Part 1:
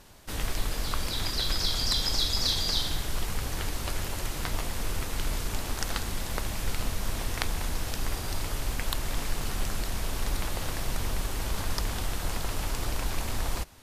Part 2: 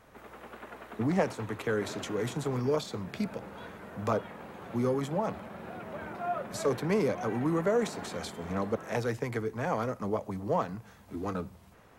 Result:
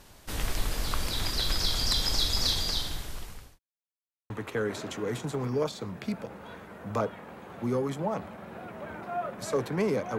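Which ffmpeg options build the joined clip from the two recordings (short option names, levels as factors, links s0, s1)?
-filter_complex "[0:a]apad=whole_dur=10.18,atrim=end=10.18,asplit=2[s0][s1];[s0]atrim=end=3.59,asetpts=PTS-STARTPTS,afade=t=out:st=2.47:d=1.12[s2];[s1]atrim=start=3.59:end=4.3,asetpts=PTS-STARTPTS,volume=0[s3];[1:a]atrim=start=1.42:end=7.3,asetpts=PTS-STARTPTS,afade=t=in:d=0.004:c=hsin[s4];[s2][s3][s4]concat=n=3:v=0:a=1"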